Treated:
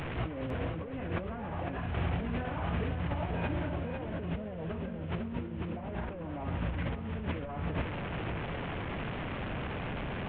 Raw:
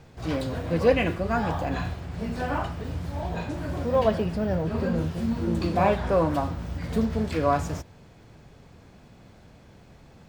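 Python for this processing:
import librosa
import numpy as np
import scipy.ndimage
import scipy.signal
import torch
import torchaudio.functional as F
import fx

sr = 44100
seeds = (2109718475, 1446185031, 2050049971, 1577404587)

p1 = fx.delta_mod(x, sr, bps=16000, step_db=-36.0)
p2 = fx.over_compress(p1, sr, threshold_db=-35.0, ratio=-1.0)
p3 = p2 + fx.echo_single(p2, sr, ms=502, db=-7.0, dry=0)
y = p3 * 10.0 ** (-1.5 / 20.0)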